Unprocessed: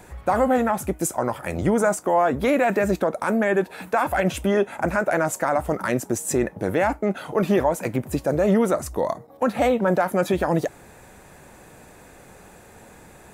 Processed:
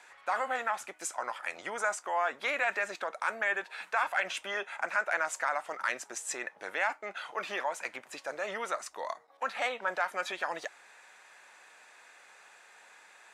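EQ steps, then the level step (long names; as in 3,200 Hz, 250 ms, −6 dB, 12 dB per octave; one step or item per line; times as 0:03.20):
high-pass filter 1,400 Hz 12 dB per octave
high-frequency loss of the air 88 metres
0.0 dB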